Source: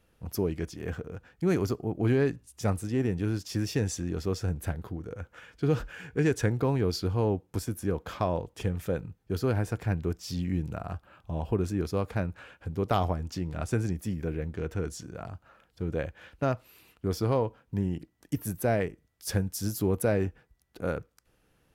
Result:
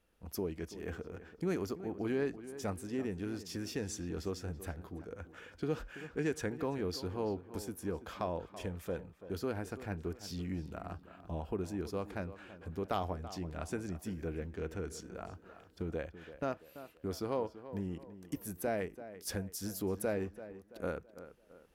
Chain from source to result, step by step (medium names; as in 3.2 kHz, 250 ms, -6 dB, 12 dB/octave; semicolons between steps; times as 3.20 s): recorder AGC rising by 5.9 dB/s; peaking EQ 120 Hz -14 dB 0.52 oct; tape echo 334 ms, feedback 45%, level -12.5 dB, low-pass 2.3 kHz; trim -7.5 dB